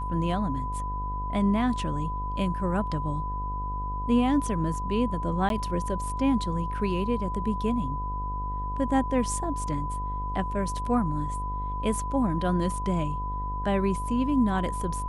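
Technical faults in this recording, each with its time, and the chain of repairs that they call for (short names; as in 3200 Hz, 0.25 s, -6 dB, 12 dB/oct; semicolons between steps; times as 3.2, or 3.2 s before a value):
buzz 50 Hz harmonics 24 -33 dBFS
tone 1000 Hz -32 dBFS
5.49–5.5 gap 12 ms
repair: de-hum 50 Hz, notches 24; notch 1000 Hz, Q 30; interpolate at 5.49, 12 ms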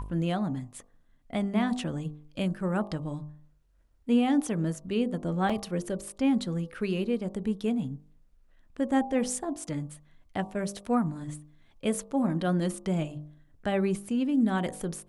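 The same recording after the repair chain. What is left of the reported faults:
none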